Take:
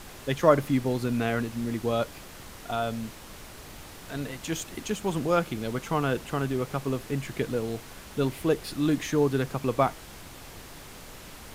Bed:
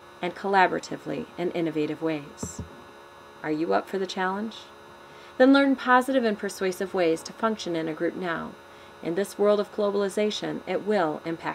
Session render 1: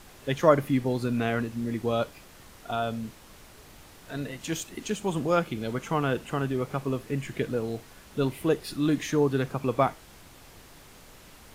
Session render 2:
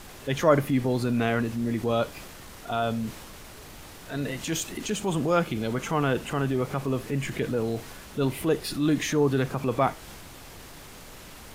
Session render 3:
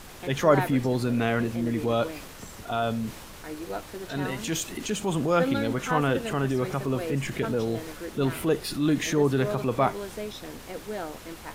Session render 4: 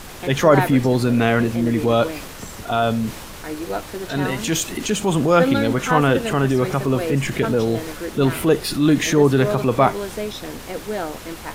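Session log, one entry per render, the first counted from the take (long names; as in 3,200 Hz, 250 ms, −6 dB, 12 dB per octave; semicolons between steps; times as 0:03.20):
noise reduction from a noise print 6 dB
in parallel at −0.5 dB: downward compressor, threshold −33 dBFS, peak gain reduction 18.5 dB; on the sum: transient designer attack −4 dB, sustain +3 dB
mix in bed −10.5 dB
level +8 dB; brickwall limiter −2 dBFS, peak gain reduction 3 dB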